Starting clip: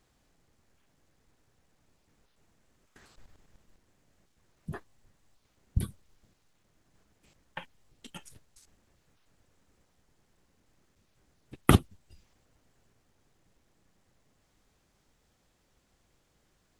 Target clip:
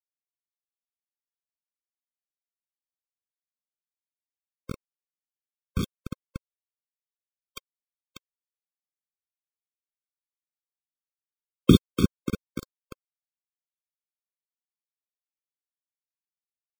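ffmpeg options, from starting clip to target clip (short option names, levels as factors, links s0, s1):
-filter_complex "[0:a]firequalizer=gain_entry='entry(110,0);entry(190,9);entry(1700,-12);entry(3500,14);entry(8600,-24)':delay=0.05:min_phase=1,acompressor=mode=upward:threshold=0.0141:ratio=2.5,asplit=2[s0][s1];[s1]adelay=293,lowpass=f=2000:p=1,volume=0.447,asplit=2[s2][s3];[s3]adelay=293,lowpass=f=2000:p=1,volume=0.48,asplit=2[s4][s5];[s5]adelay=293,lowpass=f=2000:p=1,volume=0.48,asplit=2[s6][s7];[s7]adelay=293,lowpass=f=2000:p=1,volume=0.48,asplit=2[s8][s9];[s9]adelay=293,lowpass=f=2000:p=1,volume=0.48,asplit=2[s10][s11];[s11]adelay=293,lowpass=f=2000:p=1,volume=0.48[s12];[s2][s4][s6][s8][s10][s12]amix=inputs=6:normalize=0[s13];[s0][s13]amix=inputs=2:normalize=0,acrossover=split=540[s14][s15];[s14]aeval=exprs='val(0)*(1-0.7/2+0.7/2*cos(2*PI*9.3*n/s))':c=same[s16];[s15]aeval=exprs='val(0)*(1-0.7/2-0.7/2*cos(2*PI*9.3*n/s))':c=same[s17];[s16][s17]amix=inputs=2:normalize=0,acrusher=bits=4:mix=0:aa=0.000001,afftfilt=real='re*eq(mod(floor(b*sr/1024/530),2),0)':imag='im*eq(mod(floor(b*sr/1024/530),2),0)':win_size=1024:overlap=0.75,volume=1.33"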